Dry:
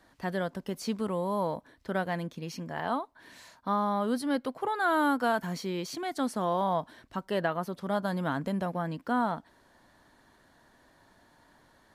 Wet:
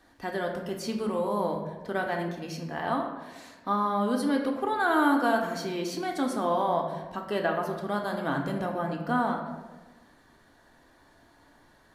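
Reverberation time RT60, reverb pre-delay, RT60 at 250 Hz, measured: 1.2 s, 3 ms, 1.4 s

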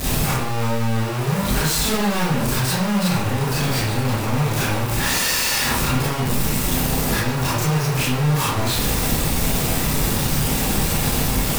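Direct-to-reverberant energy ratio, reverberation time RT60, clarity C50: -8.0 dB, 0.65 s, 0.5 dB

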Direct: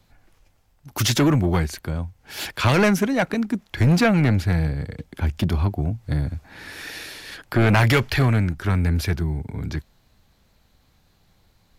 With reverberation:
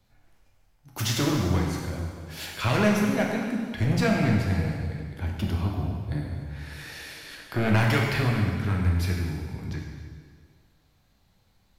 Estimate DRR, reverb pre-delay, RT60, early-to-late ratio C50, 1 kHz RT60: -1.5 dB, 6 ms, 1.8 s, 2.0 dB, 1.8 s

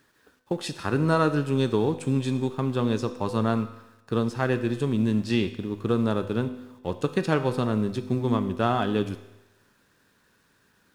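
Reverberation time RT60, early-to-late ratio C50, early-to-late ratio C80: 1.0 s, 12.5 dB, 14.0 dB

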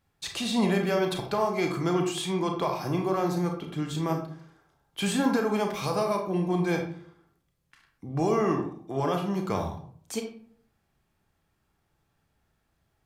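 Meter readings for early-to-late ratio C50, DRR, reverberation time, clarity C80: 6.5 dB, 3.0 dB, 0.55 s, 10.5 dB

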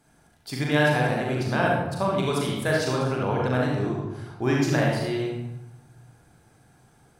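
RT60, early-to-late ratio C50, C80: 0.95 s, -1.0 dB, 3.0 dB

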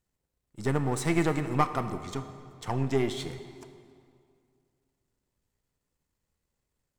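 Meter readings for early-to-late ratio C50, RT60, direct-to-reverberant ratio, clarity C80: 10.0 dB, 2.3 s, 9.0 dB, 11.0 dB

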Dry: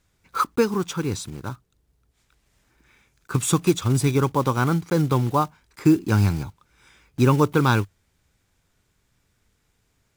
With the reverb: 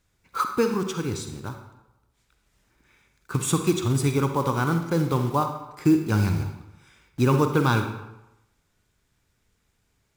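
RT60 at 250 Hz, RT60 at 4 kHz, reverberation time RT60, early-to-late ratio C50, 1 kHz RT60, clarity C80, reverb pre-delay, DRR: 0.85 s, 0.70 s, 0.95 s, 6.5 dB, 0.95 s, 9.0 dB, 40 ms, 6.0 dB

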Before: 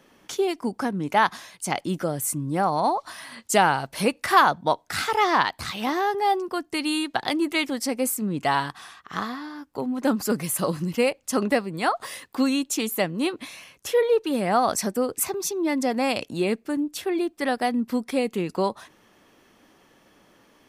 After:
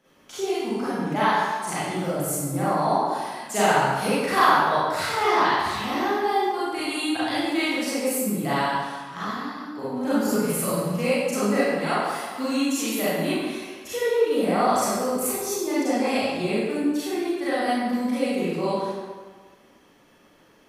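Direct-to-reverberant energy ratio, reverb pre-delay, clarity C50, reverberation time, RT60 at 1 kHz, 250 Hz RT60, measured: -11.0 dB, 32 ms, -5.0 dB, 1.5 s, 1.5 s, 1.4 s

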